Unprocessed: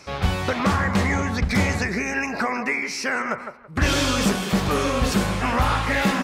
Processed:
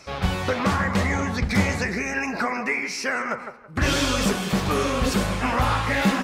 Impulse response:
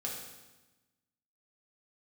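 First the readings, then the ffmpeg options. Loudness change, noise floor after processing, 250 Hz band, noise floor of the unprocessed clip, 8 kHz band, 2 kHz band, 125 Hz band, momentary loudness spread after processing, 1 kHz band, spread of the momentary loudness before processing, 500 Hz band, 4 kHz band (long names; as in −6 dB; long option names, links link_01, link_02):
−1.0 dB, −40 dBFS, −1.0 dB, −38 dBFS, −1.0 dB, −1.0 dB, −1.5 dB, 4 LU, −1.0 dB, 4 LU, −0.5 dB, −1.0 dB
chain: -filter_complex "[0:a]flanger=delay=1.5:depth=8.4:regen=66:speed=0.95:shape=sinusoidal,asplit=2[link_01][link_02];[1:a]atrim=start_sample=2205[link_03];[link_02][link_03]afir=irnorm=-1:irlink=0,volume=-18dB[link_04];[link_01][link_04]amix=inputs=2:normalize=0,volume=2.5dB"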